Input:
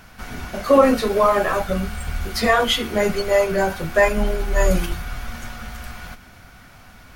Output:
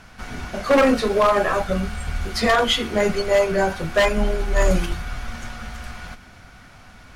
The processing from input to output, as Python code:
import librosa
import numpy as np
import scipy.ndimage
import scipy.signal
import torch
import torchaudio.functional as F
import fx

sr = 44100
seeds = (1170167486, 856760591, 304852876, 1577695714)

y = scipy.signal.sosfilt(scipy.signal.butter(2, 9200.0, 'lowpass', fs=sr, output='sos'), x)
y = 10.0 ** (-9.0 / 20.0) * (np.abs((y / 10.0 ** (-9.0 / 20.0) + 3.0) % 4.0 - 2.0) - 1.0)